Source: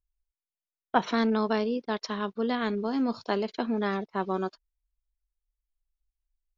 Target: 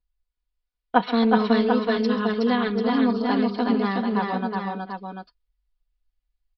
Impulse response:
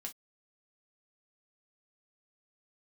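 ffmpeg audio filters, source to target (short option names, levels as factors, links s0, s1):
-filter_complex "[0:a]aecho=1:1:4.1:0.87,aecho=1:1:136|265|370|443|742:0.126|0.112|0.708|0.133|0.447,asplit=2[s0][s1];[1:a]atrim=start_sample=2205,asetrate=52920,aresample=44100[s2];[s1][s2]afir=irnorm=-1:irlink=0,volume=0.2[s3];[s0][s3]amix=inputs=2:normalize=0,aresample=11025,aresample=44100"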